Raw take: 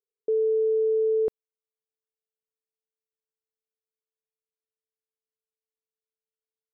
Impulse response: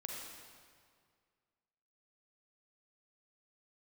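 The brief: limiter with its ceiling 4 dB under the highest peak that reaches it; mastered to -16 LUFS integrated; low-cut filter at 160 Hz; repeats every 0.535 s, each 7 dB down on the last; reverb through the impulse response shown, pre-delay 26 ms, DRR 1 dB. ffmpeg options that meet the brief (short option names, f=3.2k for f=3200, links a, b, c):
-filter_complex "[0:a]highpass=160,alimiter=limit=-23.5dB:level=0:latency=1,aecho=1:1:535|1070|1605|2140|2675:0.447|0.201|0.0905|0.0407|0.0183,asplit=2[a][b];[1:a]atrim=start_sample=2205,adelay=26[c];[b][c]afir=irnorm=-1:irlink=0,volume=0dB[d];[a][d]amix=inputs=2:normalize=0,volume=15.5dB"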